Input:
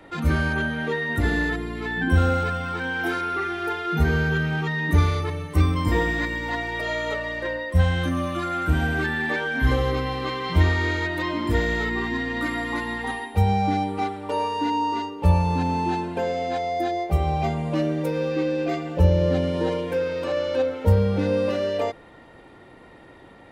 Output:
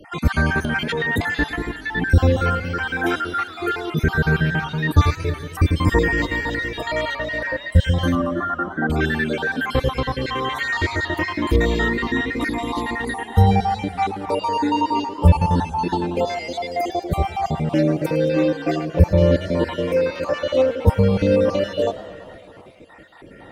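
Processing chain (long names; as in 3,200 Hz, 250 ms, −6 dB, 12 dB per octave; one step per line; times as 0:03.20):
time-frequency cells dropped at random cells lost 44%
0:00.58–0:01.22: transient designer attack −4 dB, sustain +10 dB
0:08.15–0:08.90: linear-phase brick-wall band-pass 160–2,000 Hz
0:16.27–0:16.89: spectral tilt +2 dB per octave
feedback echo with a swinging delay time 112 ms, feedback 74%, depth 177 cents, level −17 dB
level +6 dB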